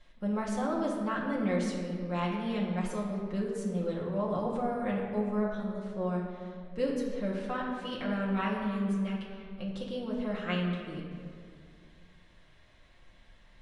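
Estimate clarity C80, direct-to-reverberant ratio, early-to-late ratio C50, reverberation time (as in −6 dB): 3.5 dB, −5.5 dB, 2.0 dB, 2.2 s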